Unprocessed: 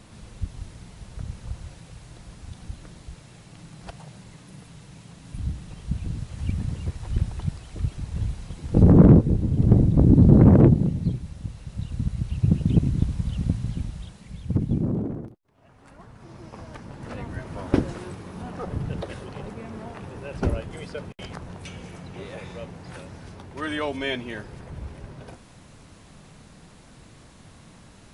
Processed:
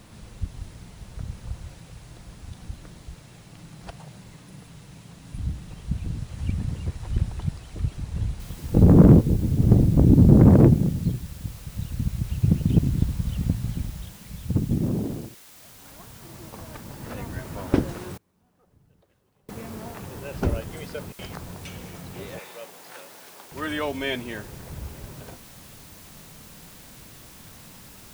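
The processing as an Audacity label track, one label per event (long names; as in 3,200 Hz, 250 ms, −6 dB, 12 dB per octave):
8.400000	8.400000	noise floor change −65 dB −49 dB
18.170000	19.490000	gate with flip shuts at −36 dBFS, range −31 dB
22.390000	23.520000	high-pass filter 480 Hz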